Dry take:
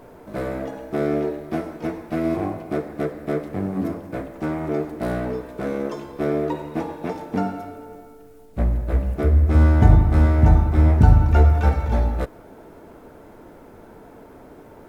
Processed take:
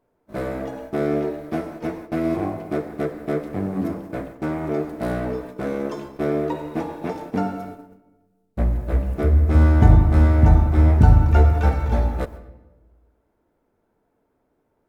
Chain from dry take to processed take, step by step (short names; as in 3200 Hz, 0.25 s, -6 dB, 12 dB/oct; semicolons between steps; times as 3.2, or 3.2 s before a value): gate -36 dBFS, range -25 dB; on a send: reverb RT60 1.2 s, pre-delay 0.127 s, DRR 18 dB